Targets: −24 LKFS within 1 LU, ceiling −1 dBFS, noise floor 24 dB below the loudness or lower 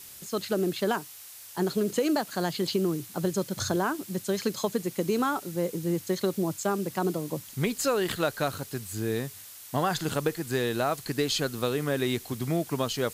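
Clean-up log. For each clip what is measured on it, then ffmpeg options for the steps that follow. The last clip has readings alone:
background noise floor −46 dBFS; target noise floor −53 dBFS; integrated loudness −29.0 LKFS; sample peak −12.5 dBFS; target loudness −24.0 LKFS
→ -af "afftdn=noise_reduction=7:noise_floor=-46"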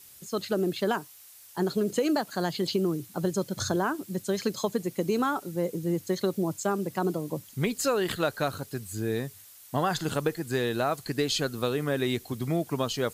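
background noise floor −51 dBFS; target noise floor −54 dBFS
→ -af "afftdn=noise_reduction=6:noise_floor=-51"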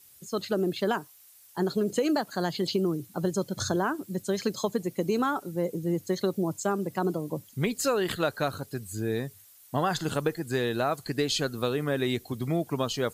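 background noise floor −55 dBFS; integrated loudness −29.5 LKFS; sample peak −13.0 dBFS; target loudness −24.0 LKFS
→ -af "volume=5.5dB"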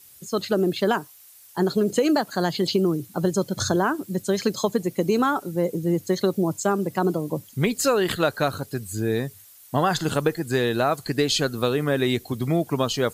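integrated loudness −24.0 LKFS; sample peak −7.5 dBFS; background noise floor −50 dBFS

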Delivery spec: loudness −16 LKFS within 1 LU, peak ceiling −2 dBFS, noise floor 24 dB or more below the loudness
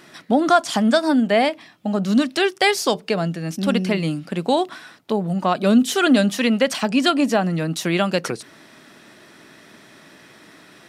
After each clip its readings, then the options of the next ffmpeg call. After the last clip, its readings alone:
integrated loudness −19.5 LKFS; sample peak −3.0 dBFS; target loudness −16.0 LKFS
→ -af "volume=3.5dB,alimiter=limit=-2dB:level=0:latency=1"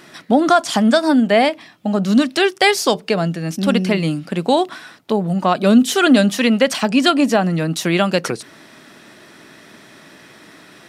integrated loudness −16.5 LKFS; sample peak −2.0 dBFS; background noise floor −45 dBFS

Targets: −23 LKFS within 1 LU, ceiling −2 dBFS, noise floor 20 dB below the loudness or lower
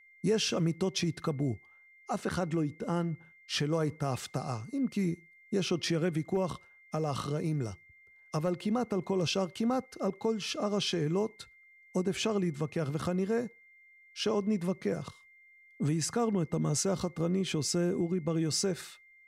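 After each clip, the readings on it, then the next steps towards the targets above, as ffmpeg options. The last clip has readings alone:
interfering tone 2,100 Hz; level of the tone −57 dBFS; integrated loudness −32.5 LKFS; sample peak −18.5 dBFS; target loudness −23.0 LKFS
→ -af "bandreject=frequency=2100:width=30"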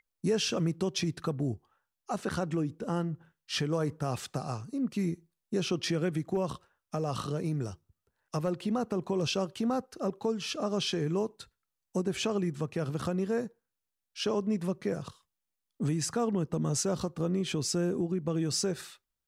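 interfering tone none found; integrated loudness −32.5 LKFS; sample peak −18.5 dBFS; target loudness −23.0 LKFS
→ -af "volume=9.5dB"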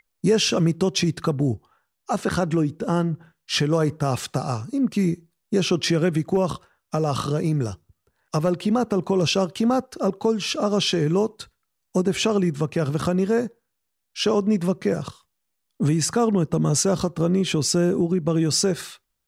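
integrated loudness −23.0 LKFS; sample peak −9.0 dBFS; background noise floor −77 dBFS

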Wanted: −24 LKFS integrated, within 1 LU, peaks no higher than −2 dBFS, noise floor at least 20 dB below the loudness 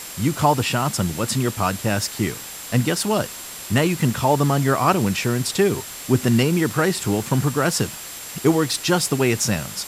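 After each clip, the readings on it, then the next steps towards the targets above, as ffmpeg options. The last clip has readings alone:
interfering tone 7,500 Hz; level of the tone −40 dBFS; background noise floor −35 dBFS; target noise floor −41 dBFS; integrated loudness −21.0 LKFS; sample peak −4.0 dBFS; target loudness −24.0 LKFS
→ -af "bandreject=frequency=7500:width=30"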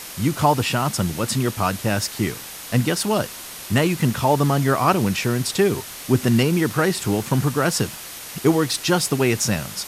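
interfering tone none found; background noise floor −36 dBFS; target noise floor −41 dBFS
→ -af "afftdn=noise_reduction=6:noise_floor=-36"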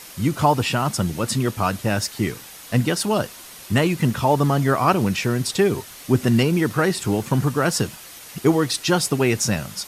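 background noise floor −41 dBFS; integrated loudness −21.0 LKFS; sample peak −4.0 dBFS; target loudness −24.0 LKFS
→ -af "volume=-3dB"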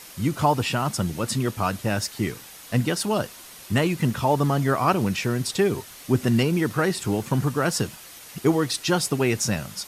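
integrated loudness −24.0 LKFS; sample peak −7.0 dBFS; background noise floor −44 dBFS

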